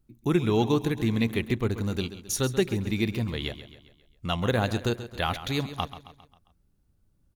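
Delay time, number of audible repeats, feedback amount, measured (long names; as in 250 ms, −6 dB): 134 ms, 4, 50%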